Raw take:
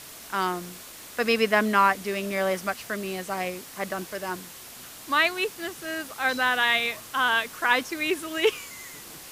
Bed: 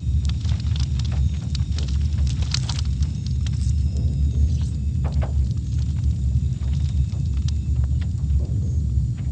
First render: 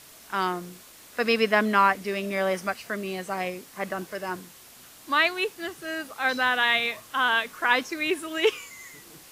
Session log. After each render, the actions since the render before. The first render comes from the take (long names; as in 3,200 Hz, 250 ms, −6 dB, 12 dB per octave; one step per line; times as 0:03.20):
noise reduction from a noise print 6 dB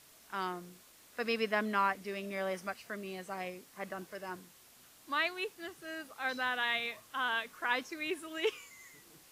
level −10.5 dB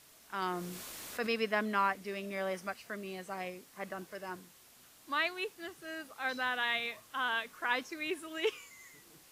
0:00.42–0:01.27: envelope flattener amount 50%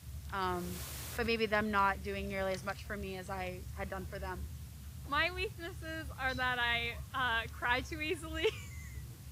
mix in bed −25 dB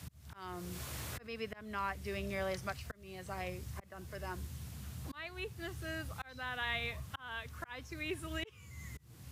volume swells 609 ms
multiband upward and downward compressor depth 40%